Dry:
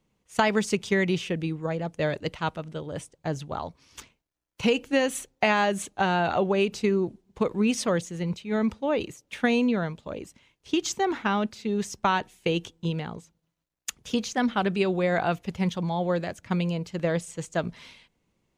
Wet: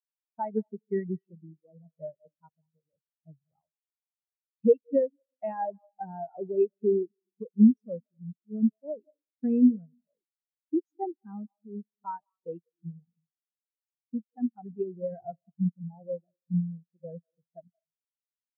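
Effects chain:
0:14.38–0:15.32: low shelf with overshoot 150 Hz +9.5 dB, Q 1.5
convolution reverb RT60 0.90 s, pre-delay 158 ms, DRR 10 dB
every bin expanded away from the loudest bin 4 to 1
level −2.5 dB

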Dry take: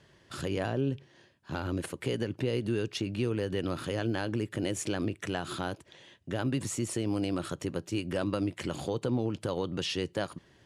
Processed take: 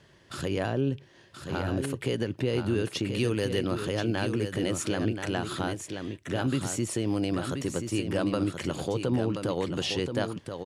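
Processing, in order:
0:03.08–0:03.59: high-shelf EQ 3,200 Hz +11 dB
single-tap delay 1,029 ms −7 dB
level +2.5 dB

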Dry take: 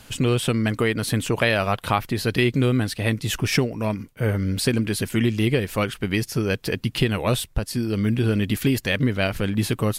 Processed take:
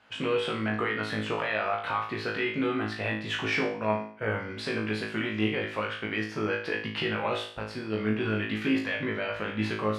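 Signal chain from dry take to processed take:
high-pass filter 1,300 Hz 6 dB per octave
noise gate −42 dBFS, range −8 dB
low-pass filter 1,800 Hz 12 dB per octave
brickwall limiter −23 dBFS, peak gain reduction 11.5 dB
flutter between parallel walls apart 3.2 metres, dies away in 0.48 s
level +3 dB

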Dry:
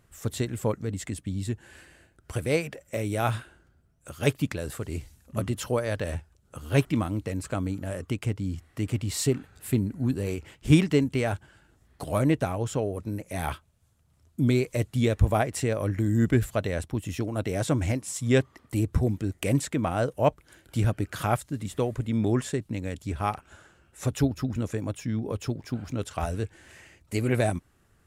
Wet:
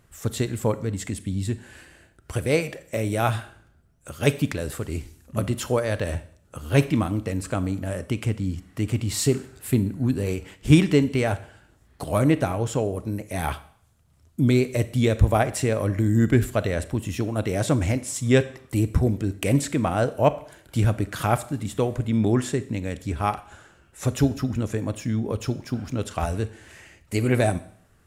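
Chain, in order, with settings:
four-comb reverb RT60 0.59 s, combs from 28 ms, DRR 14 dB
level +3.5 dB

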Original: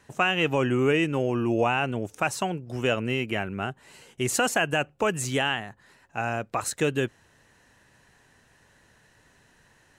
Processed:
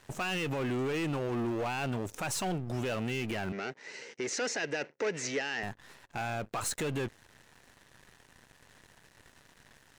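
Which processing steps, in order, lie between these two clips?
gain on one half-wave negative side −7 dB
brickwall limiter −22.5 dBFS, peak gain reduction 10.5 dB
leveller curve on the samples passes 3
0:03.52–0:05.63: loudspeaker in its box 280–6,100 Hz, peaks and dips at 450 Hz +7 dB, 730 Hz −5 dB, 1,100 Hz −7 dB, 2,000 Hz +8 dB, 3,200 Hz −5 dB, 5,800 Hz +7 dB
level −4.5 dB

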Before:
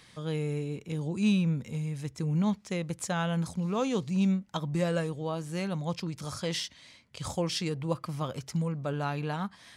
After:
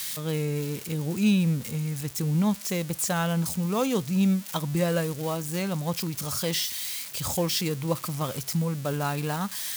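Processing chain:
spike at every zero crossing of −28.5 dBFS
level +3.5 dB

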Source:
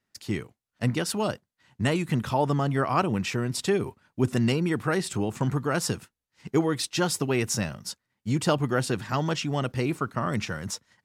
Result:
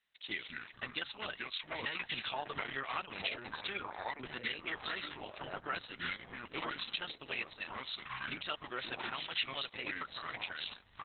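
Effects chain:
meter weighting curve ITU-R 468
far-end echo of a speakerphone 130 ms, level −26 dB
dynamic equaliser 2,600 Hz, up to +5 dB, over −38 dBFS, Q 0.87
delay with pitch and tempo change per echo 110 ms, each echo −5 semitones, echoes 3, each echo −6 dB
downward compressor 3 to 1, threshold −26 dBFS, peak gain reduction 10.5 dB
level −8 dB
Opus 6 kbit/s 48,000 Hz

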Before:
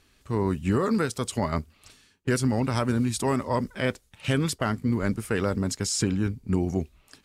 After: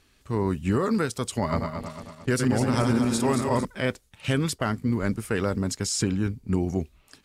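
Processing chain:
0:01.37–0:03.65: feedback delay that plays each chunk backwards 112 ms, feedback 69%, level −5 dB

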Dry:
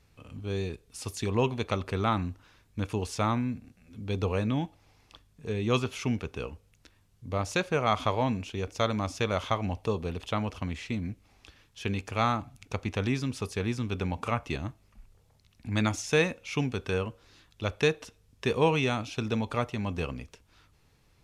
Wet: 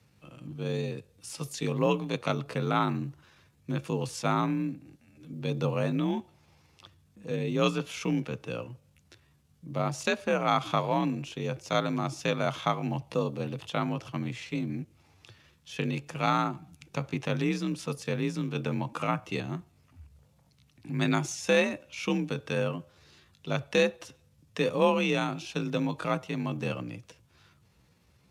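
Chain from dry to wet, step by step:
floating-point word with a short mantissa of 6 bits
frequency shifter +46 Hz
tempo change 0.75×

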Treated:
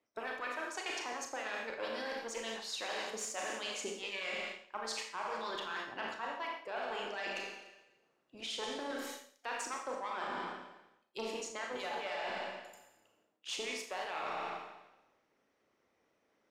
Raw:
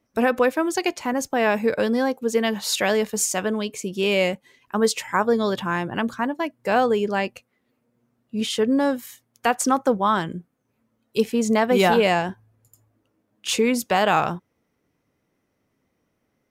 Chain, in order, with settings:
one-sided soft clipper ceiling −18 dBFS
three-way crossover with the lows and the highs turned down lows −15 dB, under 310 Hz, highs −17 dB, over 7,300 Hz
harmonic and percussive parts rebalanced harmonic −16 dB
four-comb reverb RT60 1 s, combs from 28 ms, DRR 0.5 dB
reversed playback
downward compressor 12 to 1, threshold −38 dBFS, peak gain reduction 19.5 dB
reversed playback
level +1.5 dB

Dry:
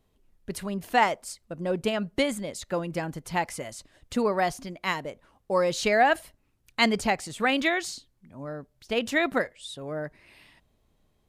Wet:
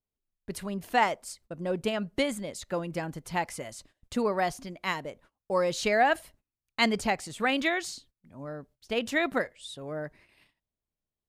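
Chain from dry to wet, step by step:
noise gate −53 dBFS, range −22 dB
level −2.5 dB

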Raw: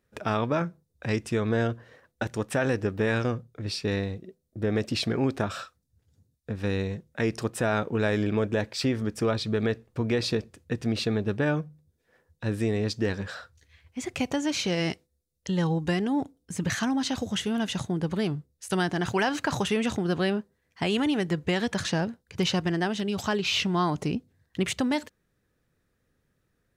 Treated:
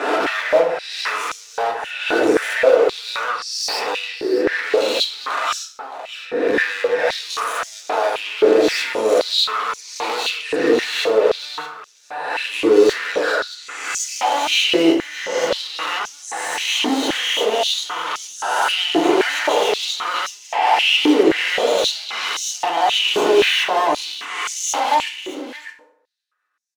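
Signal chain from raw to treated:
peak hold with a rise ahead of every peak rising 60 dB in 0.89 s
in parallel at −0.5 dB: brickwall limiter −21 dBFS, peak gain reduction 11 dB
on the sum: flanger swept by the level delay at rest 9.8 ms, full sweep at −19 dBFS
downward expander −54 dBFS
mid-hump overdrive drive 27 dB, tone 2,500 Hz, clips at −9.5 dBFS
hard clipping −17 dBFS, distortion −14 dB
on a send: single-tap delay 619 ms −13.5 dB
on the sum: feedback delay network reverb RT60 0.73 s, low-frequency decay 0.85×, high-frequency decay 0.6×, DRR 1 dB
high-pass on a step sequencer 3.8 Hz 360–6,100 Hz
level −4 dB

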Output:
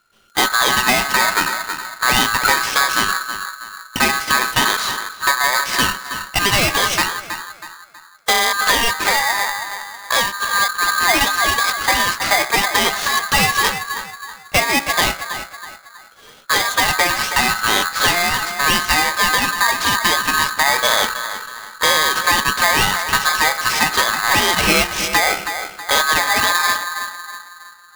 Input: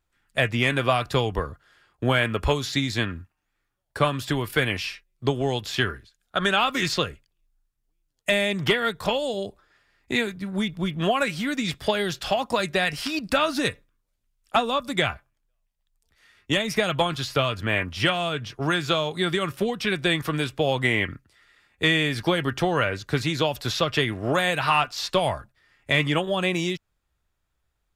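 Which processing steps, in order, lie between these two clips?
high-shelf EQ 6,500 Hz −10.5 dB
hum removal 65.82 Hz, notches 17
in parallel at +2.5 dB: downward compressor, threshold −33 dBFS, peak gain reduction 15.5 dB
on the sum: gain into a clipping stage and back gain 15 dB
on a send: feedback echo with a low-pass in the loop 322 ms, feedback 46%, low-pass 870 Hz, level −7 dB
on the sum: ring modulator with a square carrier 1,400 Hz
level +6 dB

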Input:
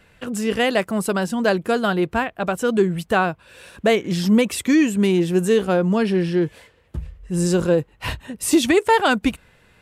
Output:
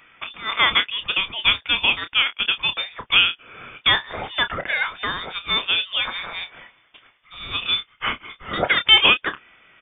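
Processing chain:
Bessel high-pass filter 900 Hz, order 8
double-tracking delay 29 ms −10.5 dB
voice inversion scrambler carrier 4,000 Hz
level +6 dB

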